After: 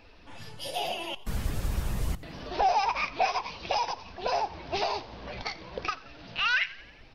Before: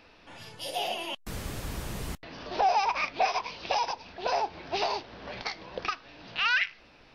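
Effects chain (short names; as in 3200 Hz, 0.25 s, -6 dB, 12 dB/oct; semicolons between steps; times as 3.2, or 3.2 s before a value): bin magnitudes rounded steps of 15 dB; low shelf 92 Hz +11.5 dB; frequency-shifting echo 88 ms, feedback 60%, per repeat +48 Hz, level -20 dB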